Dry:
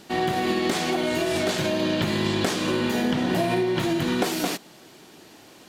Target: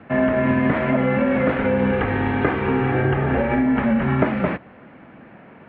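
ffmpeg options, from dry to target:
-filter_complex "[0:a]highpass=f=230:t=q:w=0.5412,highpass=f=230:t=q:w=1.307,lowpass=f=2.3k:t=q:w=0.5176,lowpass=f=2.3k:t=q:w=0.7071,lowpass=f=2.3k:t=q:w=1.932,afreqshift=-110,asettb=1/sr,asplit=3[a][b][c];[a]atrim=end=1.914[d];[b]atrim=start=1.91:end=3.66,asetpts=PTS-STARTPTS,afade=t=in:d=0.004:c=qsin,afade=t=out:st=1.746:d=0.004:c=qsin,aecho=1:1:2.5:0.5,atrim=end_sample=77175[e];[c]atrim=start=3.656[f];[d][e]acrossfade=d=0.004:c1=hsin:c2=qsin[g];[g][f]acrossfade=d=0.004:c1=qsin:c2=hsin,volume=6.5dB"

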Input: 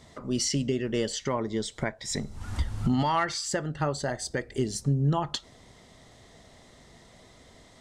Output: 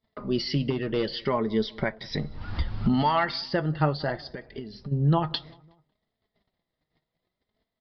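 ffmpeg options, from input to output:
-filter_complex "[0:a]asettb=1/sr,asplit=3[a][b][c];[a]atrim=end=0.704[d];[b]atrim=start=0.7:end=1.17,asetpts=PTS-STARTPTS,afade=t=in:d=0.004:c=qsin,afade=t=out:st=0.466:d=0.004:c=qsin,volume=22.5dB,asoftclip=hard,volume=-22.5dB[e];[c]atrim=start=1.166[f];[d][e]acrossfade=d=0.004:c1=hsin:c2=qsin[g];[g][f]acrossfade=d=0.004:c1=qsin:c2=hsin,aresample=11025,aresample=44100,agate=range=-33dB:threshold=-49dB:ratio=16:detection=peak,asplit=3[h][i][j];[h]afade=t=out:st=4.2:d=0.02[k];[i]acompressor=threshold=-37dB:ratio=6,afade=t=in:st=4.2:d=0.02,afade=t=out:st=4.91:d=0.02[l];[j]afade=t=in:st=4.91:d=0.02[m];[k][l][m]amix=inputs=3:normalize=0,flanger=delay=4.5:depth=2:regen=52:speed=0.65:shape=sinusoidal,asplit=2[n][o];[o]adelay=184,lowpass=f=1.5k:p=1,volume=-23.5dB,asplit=2[p][q];[q]adelay=184,lowpass=f=1.5k:p=1,volume=0.51,asplit=2[r][s];[s]adelay=184,lowpass=f=1.5k:p=1,volume=0.51[t];[p][r][t]amix=inputs=3:normalize=0[u];[n][u]amix=inputs=2:normalize=0,volume=6.5dB"

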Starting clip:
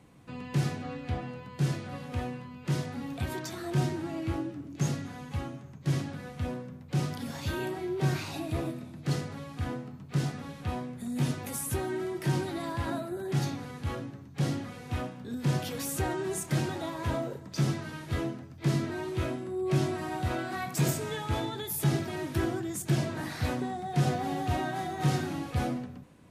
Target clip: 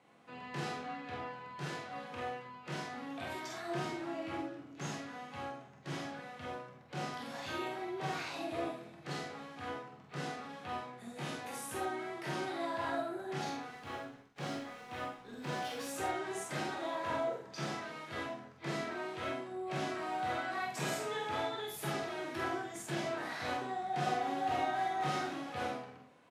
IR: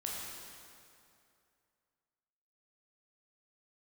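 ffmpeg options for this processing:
-filter_complex "[0:a]highpass=600,aemphasis=mode=reproduction:type=bsi,asettb=1/sr,asplit=3[a][b][c];[a]atrim=end=13.714[d];[b]atrim=start=13.71:end=15.89,asetpts=PTS-STARTPTS,afade=t=in:d=0.004:c=qsin,afade=t=out:st=2.176:d=0.004:c=qsin,aeval=exprs='sgn(val(0))*max(abs(val(0))-0.001,0)':c=same[e];[c]atrim=start=15.886[f];[d][e]acrossfade=d=0.004:c1=hsin:c2=qsin[g];[g][f]acrossfade=d=0.004:c1=qsin:c2=hsin,asplit=2[h][i];[i]adelay=47,volume=-4.5dB[j];[h][j]amix=inputs=2:normalize=0[k];[1:a]atrim=start_sample=2205,atrim=end_sample=3528[l];[k][l]afir=irnorm=-1:irlink=0,volume=1dB"

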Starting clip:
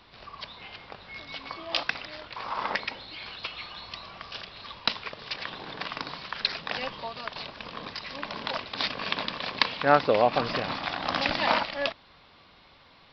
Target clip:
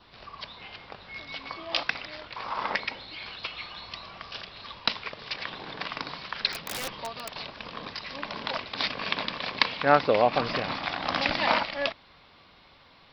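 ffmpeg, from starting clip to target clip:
-filter_complex "[0:a]adynamicequalizer=threshold=0.00708:dfrequency=2200:dqfactor=6:tfrequency=2200:tqfactor=6:attack=5:release=100:ratio=0.375:range=1.5:mode=boostabove:tftype=bell,asettb=1/sr,asplit=3[a][b][c];[a]atrim=end=6.524[d];[b]atrim=start=6.52:end=7.33,asetpts=PTS-STARTPTS,afade=t=in:d=0.004:c=qsin,afade=t=out:st=0.806:d=0.004:c=qsin,aeval=exprs='(mod(18.8*val(0)+1,2)-1)/18.8':c=same[e];[c]atrim=start=7.326[f];[d][e]acrossfade=d=0.004:c1=hsin:c2=qsin[g];[g][f]acrossfade=d=0.004:c1=qsin:c2=hsin"

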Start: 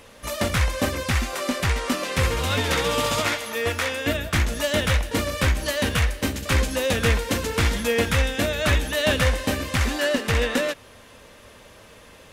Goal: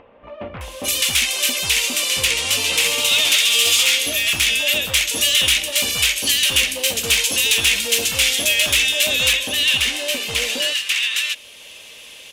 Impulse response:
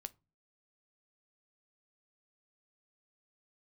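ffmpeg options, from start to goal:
-filter_complex "[0:a]acrossover=split=1200[a][b];[b]adelay=610[c];[a][c]amix=inputs=2:normalize=0,asetnsamples=n=441:p=0,asendcmd='9.33 lowpass f 2800',asplit=2[d][e];[e]highpass=f=720:p=1,volume=15dB,asoftclip=type=tanh:threshold=-7dB[f];[d][f]amix=inputs=2:normalize=0,lowpass=f=6.8k:p=1,volume=-6dB,aexciter=amount=2.4:drive=3:freq=2.5k,acompressor=mode=upward:threshold=-33dB:ratio=2.5,highshelf=f=2k:t=q:w=1.5:g=8,volume=-9dB"

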